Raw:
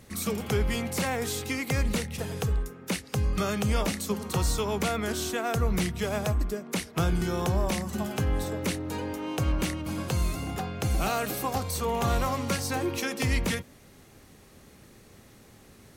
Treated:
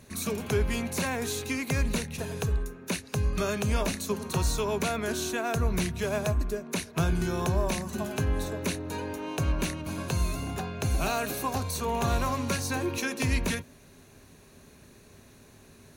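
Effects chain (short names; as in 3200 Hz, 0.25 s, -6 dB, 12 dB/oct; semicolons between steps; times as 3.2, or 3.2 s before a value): ripple EQ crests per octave 1.5, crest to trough 6 dB; gain -1 dB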